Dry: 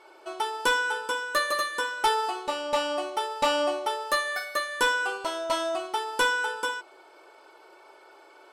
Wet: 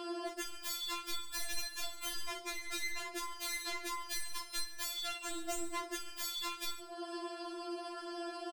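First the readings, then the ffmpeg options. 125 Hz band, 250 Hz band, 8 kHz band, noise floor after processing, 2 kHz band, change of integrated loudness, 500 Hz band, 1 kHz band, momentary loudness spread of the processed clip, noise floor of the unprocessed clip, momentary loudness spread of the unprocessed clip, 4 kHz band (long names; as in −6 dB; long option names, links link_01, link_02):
can't be measured, −4.5 dB, −2.5 dB, −49 dBFS, −16.5 dB, −12.5 dB, −16.0 dB, −16.5 dB, 5 LU, −54 dBFS, 7 LU, −8.0 dB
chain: -filter_complex "[0:a]aeval=exprs='0.0266*(abs(mod(val(0)/0.0266+3,4)-2)-1)':channel_layout=same,asplit=2[link_01][link_02];[link_02]aecho=0:1:142:0.0841[link_03];[link_01][link_03]amix=inputs=2:normalize=0,acompressor=threshold=-49dB:ratio=16,afftfilt=real='re*4*eq(mod(b,16),0)':imag='im*4*eq(mod(b,16),0)':win_size=2048:overlap=0.75,volume=15dB"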